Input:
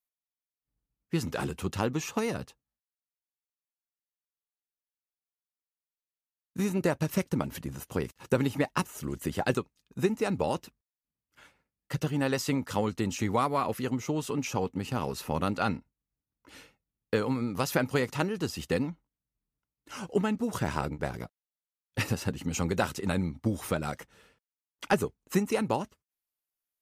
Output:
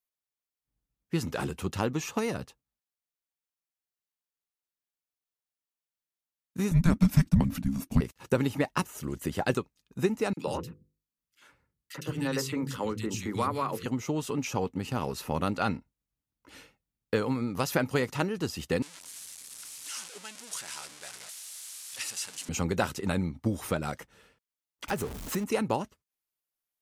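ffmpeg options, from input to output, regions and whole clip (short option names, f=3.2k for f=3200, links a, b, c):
-filter_complex "[0:a]asettb=1/sr,asplit=3[a][b][c];[a]atrim=end=6.714[d];[b]atrim=start=6.71:end=8.01,asetpts=PTS-STARTPTS,afade=t=in:d=0.004:c=qsin,afade=t=out:st=1.296:d=0.004:c=qsin,agate=range=-33dB:threshold=-48dB:ratio=3:release=100:detection=peak,lowshelf=f=270:g=12,afreqshift=-340[e];[c]atrim=start=8.006[f];[d][e]acrossfade=d=0.004:c1=hsin:c2=qsin[g];[g][f]acrossfade=d=0.004:c1=qsin:c2=hsin,asettb=1/sr,asplit=3[h][i][j];[h]atrim=end=10.334[k];[i]atrim=start=10.33:end=13.86,asetpts=PTS-STARTPTS,afade=t=in:d=0.004:c=qsin,afade=t=out:st=3.526:d=0.004:c=qsin,equalizer=f=700:w=2.9:g=-8,bandreject=f=50:t=h:w=6,bandreject=f=100:t=h:w=6,bandreject=f=150:t=h:w=6,bandreject=f=200:t=h:w=6,bandreject=f=250:t=h:w=6,bandreject=f=300:t=h:w=6,bandreject=f=350:t=h:w=6,bandreject=f=400:t=h:w=6,bandreject=f=450:t=h:w=6,bandreject=f=500:t=h:w=6,acrossover=split=180|2100[l][m][n];[m]adelay=40[o];[l]adelay=140[p];[p][o][n]amix=inputs=3:normalize=0,atrim=end_sample=155673[q];[j]atrim=start=13.856[r];[k][q]acrossfade=d=0.004:c1=hsin:c2=qsin[s];[s][r]acrossfade=d=0.004:c1=qsin:c2=hsin,asettb=1/sr,asplit=3[t][u][v];[t]atrim=end=18.824[w];[u]atrim=start=18.82:end=22.49,asetpts=PTS-STARTPTS,afade=t=in:d=0.004:c=qsin,afade=t=out:st=3.666:d=0.004:c=qsin,aeval=exprs='val(0)+0.5*0.0447*sgn(val(0))':c=same,lowpass=f=10k:w=0.5412,lowpass=f=10k:w=1.3066,aderivative[x];[v]atrim=start=22.486[y];[w][x]acrossfade=d=0.004:c1=hsin:c2=qsin[z];[z][y]acrossfade=d=0.004:c1=qsin:c2=hsin,asettb=1/sr,asplit=3[aa][ab][ac];[aa]atrim=end=24.884[ad];[ab]atrim=start=24.88:end=25.44,asetpts=PTS-STARTPTS,afade=t=in:d=0.004:c=qsin,afade=t=out:st=0.556:d=0.004:c=qsin,aeval=exprs='val(0)+0.5*0.0224*sgn(val(0))':c=same,acompressor=threshold=-31dB:ratio=2:attack=3.2:release=140:knee=1:detection=peak[ae];[ac]atrim=start=25.436[af];[ad][ae]acrossfade=d=0.004:c1=hsin:c2=qsin[ag];[ag][af]acrossfade=d=0.004:c1=qsin:c2=hsin"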